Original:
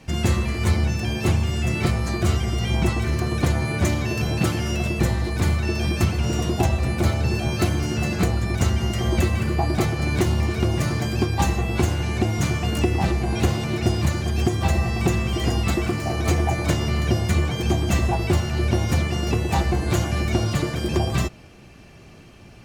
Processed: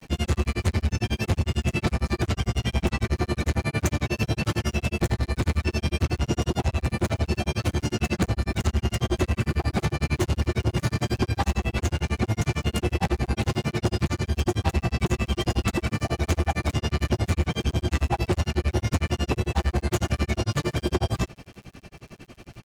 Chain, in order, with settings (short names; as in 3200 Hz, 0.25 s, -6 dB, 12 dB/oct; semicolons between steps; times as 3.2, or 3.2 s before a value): soft clip -21.5 dBFS, distortion -10 dB; grains 81 ms, grains 11/s, spray 15 ms, pitch spread up and down by 0 st; crackle 95/s -50 dBFS; gain +5.5 dB